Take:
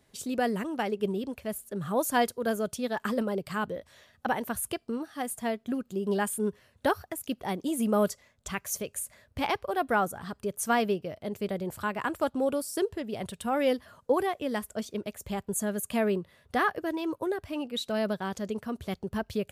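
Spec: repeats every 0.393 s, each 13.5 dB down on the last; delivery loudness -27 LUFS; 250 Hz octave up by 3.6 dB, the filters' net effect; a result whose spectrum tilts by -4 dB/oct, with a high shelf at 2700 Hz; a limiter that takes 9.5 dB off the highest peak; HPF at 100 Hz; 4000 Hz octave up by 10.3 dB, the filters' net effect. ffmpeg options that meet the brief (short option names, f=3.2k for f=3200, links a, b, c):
-af "highpass=100,equalizer=f=250:t=o:g=4.5,highshelf=f=2.7k:g=5,equalizer=f=4k:t=o:g=9,alimiter=limit=-18dB:level=0:latency=1,aecho=1:1:393|786:0.211|0.0444,volume=2.5dB"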